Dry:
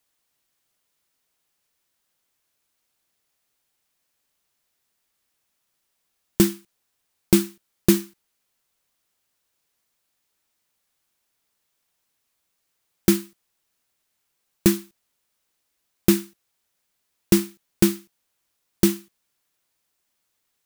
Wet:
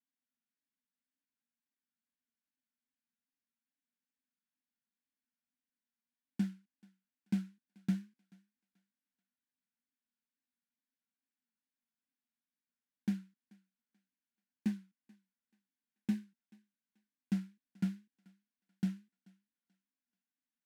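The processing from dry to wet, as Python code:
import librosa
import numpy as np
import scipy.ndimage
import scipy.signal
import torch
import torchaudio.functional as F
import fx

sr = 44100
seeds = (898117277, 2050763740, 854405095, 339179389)

p1 = fx.double_bandpass(x, sr, hz=600.0, octaves=2.5)
p2 = np.clip(p1, -10.0 ** (-32.0 / 20.0), 10.0 ** (-32.0 / 20.0))
p3 = p1 + (p2 * 10.0 ** (-10.5 / 20.0))
p4 = fx.fixed_phaser(p3, sr, hz=350.0, stages=6)
p5 = fx.wow_flutter(p4, sr, seeds[0], rate_hz=2.1, depth_cents=94.0)
p6 = fx.echo_thinned(p5, sr, ms=434, feedback_pct=31, hz=360.0, wet_db=-23.0)
y = p6 * 10.0 ** (-2.5 / 20.0)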